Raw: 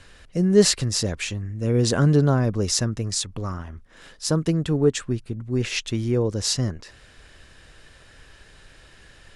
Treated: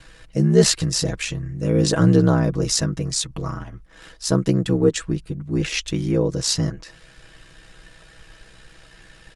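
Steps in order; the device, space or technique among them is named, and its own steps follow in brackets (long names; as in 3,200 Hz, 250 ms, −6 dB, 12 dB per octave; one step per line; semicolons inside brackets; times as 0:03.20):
ring-modulated robot voice (ring modulation 32 Hz; comb filter 6.2 ms, depth 64%)
level +3.5 dB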